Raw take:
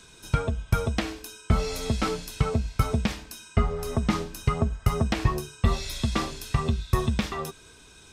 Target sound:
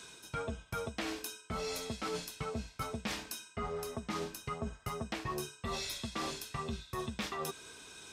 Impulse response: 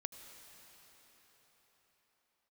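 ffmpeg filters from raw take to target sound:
-af "highpass=f=290:p=1,areverse,acompressor=threshold=0.0158:ratio=10,areverse,volume=1.12"

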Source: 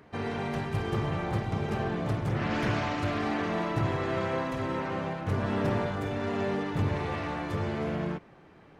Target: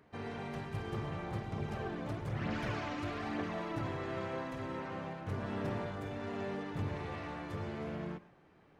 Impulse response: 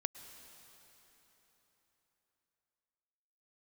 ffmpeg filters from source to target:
-filter_complex "[1:a]atrim=start_sample=2205,atrim=end_sample=6174[s0];[0:a][s0]afir=irnorm=-1:irlink=0,asettb=1/sr,asplit=3[s1][s2][s3];[s1]atrim=end=1.584[s4];[s2]atrim=start=1.58:end=3.88,asetpts=PTS-STARTPTS,afade=t=in:d=0.004:c=qsin,afade=t=out:st=2.296:d=0.004:c=qsin,aphaser=in_gain=1:out_gain=1:delay=4:decay=0.38:speed=1.1:type=triangular[s5];[s3]atrim=start=3.876[s6];[s4][s5]acrossfade=d=0.004:c1=hsin:c2=qsin[s7];[s7][s6]acrossfade=d=0.004:c1=qsin:c2=hsin,volume=0.398"

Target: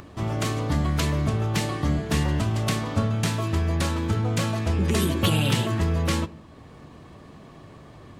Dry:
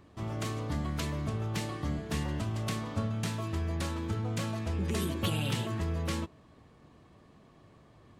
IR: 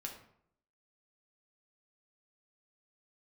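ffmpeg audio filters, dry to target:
-filter_complex "[0:a]acompressor=mode=upward:threshold=0.00355:ratio=2.5,asplit=2[s0][s1];[1:a]atrim=start_sample=2205[s2];[s1][s2]afir=irnorm=-1:irlink=0,volume=0.316[s3];[s0][s3]amix=inputs=2:normalize=0,volume=2.51"

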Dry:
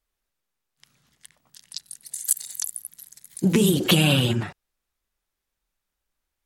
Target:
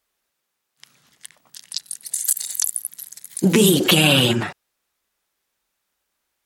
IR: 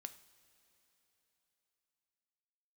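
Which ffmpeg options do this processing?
-af "highpass=f=290:p=1,alimiter=level_in=3.76:limit=0.891:release=50:level=0:latency=1,volume=0.708"

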